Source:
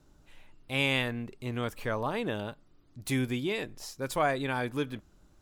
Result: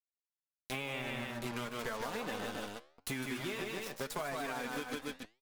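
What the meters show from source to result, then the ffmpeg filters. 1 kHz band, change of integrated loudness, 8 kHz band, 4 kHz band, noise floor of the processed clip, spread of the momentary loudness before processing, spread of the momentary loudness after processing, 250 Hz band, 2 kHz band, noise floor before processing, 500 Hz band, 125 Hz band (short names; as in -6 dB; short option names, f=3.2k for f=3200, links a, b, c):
-6.5 dB, -7.5 dB, -1.5 dB, -6.5 dB, under -85 dBFS, 11 LU, 5 LU, -8.0 dB, -6.5 dB, -62 dBFS, -7.5 dB, -11.5 dB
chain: -filter_complex "[0:a]acrusher=bits=5:mix=0:aa=0.5,aeval=exprs='sgn(val(0))*max(abs(val(0))-0.00794,0)':c=same,equalizer=f=15k:t=o:w=2.8:g=4.5,asplit=2[a][b];[b]aecho=0:1:151.6|279.9:0.562|0.316[c];[a][c]amix=inputs=2:normalize=0,flanger=delay=3.9:depth=1.3:regen=-26:speed=0.4:shape=sinusoidal,acrossover=split=730|1800[d][e][f];[d]acompressor=threshold=-43dB:ratio=4[g];[e]acompressor=threshold=-44dB:ratio=4[h];[f]acompressor=threshold=-49dB:ratio=4[i];[g][h][i]amix=inputs=3:normalize=0,flanger=delay=6.7:depth=9.7:regen=86:speed=0.92:shape=triangular,acompressor=threshold=-47dB:ratio=6,volume=12dB"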